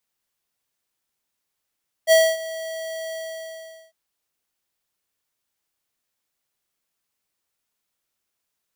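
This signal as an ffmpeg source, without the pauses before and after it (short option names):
-f lavfi -i "aevalsrc='0.237*(2*lt(mod(648*t,1),0.5)-1)':d=1.853:s=44100,afade=t=in:d=0.047,afade=t=out:st=0.047:d=0.251:silence=0.119,afade=t=out:st=1.05:d=0.803"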